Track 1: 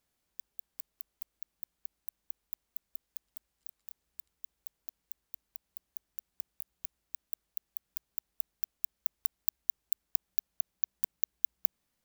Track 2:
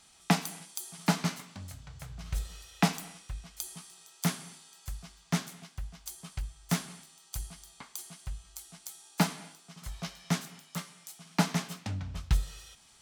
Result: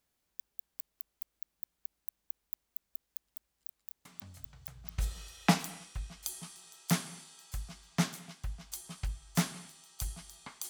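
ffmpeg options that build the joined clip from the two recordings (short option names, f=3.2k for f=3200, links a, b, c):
-filter_complex "[1:a]asplit=2[a][b];[0:a]apad=whole_dur=10.69,atrim=end=10.69,atrim=end=4.982[c];[b]atrim=start=2.318:end=8.03[d];[a]atrim=start=1.39:end=2.32,asetpts=PTS-STARTPTS,volume=-8.5dB,afade=t=in:d=0.004:c=hsin,afade=t=out:st=0.926:d=0.004:c=hsin,adelay=178605S[e];[c][d]acrossfade=d=0.004:c1=hsin:c2=hsin[f];[f][e]amix=inputs=2:normalize=0"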